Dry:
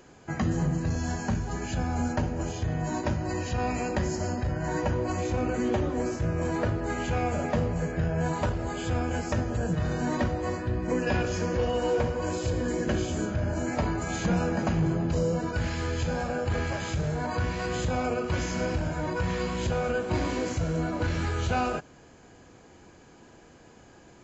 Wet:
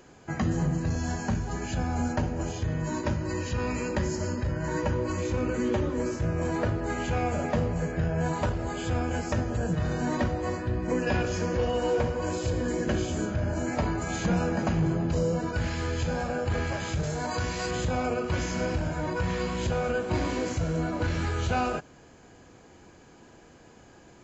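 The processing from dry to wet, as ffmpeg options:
-filter_complex "[0:a]asettb=1/sr,asplit=3[s0][s1][s2];[s0]atrim=end=2.584[s3];[s1]atrim=start=2.58:end=6.2,asetpts=PTS-STARTPTS,afade=t=in:d=0.004:c=qsin,afade=t=out:st=3.616:d=0.004:c=qsin,asuperstop=centerf=720:order=4:qfactor=6.1[s4];[s2]atrim=start=6.196[s5];[s3][s4]acrossfade=d=0.004:c1=hsin:c2=qsin[s6];[s6][s5]acrossfade=d=0.004:c1=qsin:c2=hsin,asettb=1/sr,asplit=3[s7][s8][s9];[s7]atrim=end=17.034[s10];[s8]atrim=start=17.03:end=17.71,asetpts=PTS-STARTPTS,afade=t=in:d=0.004:c=qsin,afade=t=out:st=0.676:d=0.004:c=qsin,bass=f=250:g=-3,treble=f=4000:g=10[s11];[s9]atrim=start=17.706[s12];[s10][s11]acrossfade=d=0.004:c1=hsin:c2=qsin[s13];[s13][s12]acrossfade=d=0.004:c1=qsin:c2=hsin"

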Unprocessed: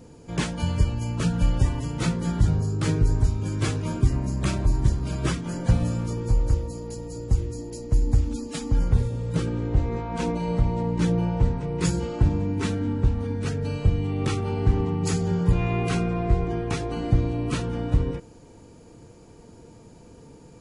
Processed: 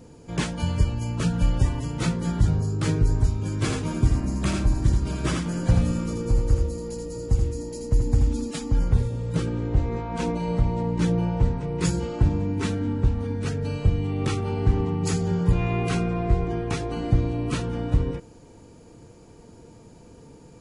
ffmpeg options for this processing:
-filter_complex "[0:a]asettb=1/sr,asplit=3[s0][s1][s2];[s0]atrim=end=3.564[s3];[s1]atrim=start=3.56:end=8.51,asetpts=PTS-STARTPTS,afade=t=in:d=0.004:c=qsin,afade=t=out:st=4.946:d=0.004:c=qsin,aecho=1:1:81:0.631,atrim=end_sample=218295[s4];[s2]atrim=start=8.506[s5];[s3][s4]acrossfade=d=0.004:c1=hsin:c2=qsin[s6];[s6][s5]acrossfade=d=0.004:c1=qsin:c2=hsin"

